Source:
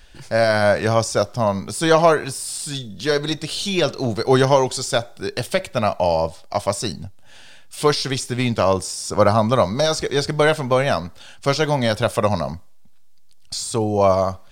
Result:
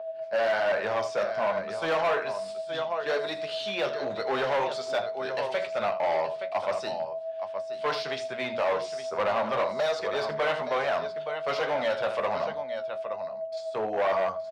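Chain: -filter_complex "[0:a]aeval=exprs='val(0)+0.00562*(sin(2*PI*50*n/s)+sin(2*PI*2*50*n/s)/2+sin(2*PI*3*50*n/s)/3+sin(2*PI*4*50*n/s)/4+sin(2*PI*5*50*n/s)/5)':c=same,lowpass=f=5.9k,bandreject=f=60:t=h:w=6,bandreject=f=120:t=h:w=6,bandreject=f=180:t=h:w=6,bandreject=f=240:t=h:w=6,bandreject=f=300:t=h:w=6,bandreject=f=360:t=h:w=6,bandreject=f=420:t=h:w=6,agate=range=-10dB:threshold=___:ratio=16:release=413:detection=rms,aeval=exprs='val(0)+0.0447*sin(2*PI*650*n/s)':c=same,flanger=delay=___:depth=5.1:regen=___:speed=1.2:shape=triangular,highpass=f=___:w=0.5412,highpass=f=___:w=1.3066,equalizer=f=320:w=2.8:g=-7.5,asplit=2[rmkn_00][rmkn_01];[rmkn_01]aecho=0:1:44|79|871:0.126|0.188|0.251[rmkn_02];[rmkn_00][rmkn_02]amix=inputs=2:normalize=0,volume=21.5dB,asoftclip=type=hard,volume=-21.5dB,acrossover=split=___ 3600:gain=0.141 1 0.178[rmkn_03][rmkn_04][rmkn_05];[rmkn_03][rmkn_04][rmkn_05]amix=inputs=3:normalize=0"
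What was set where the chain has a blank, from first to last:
-25dB, 9.7, 48, 110, 110, 330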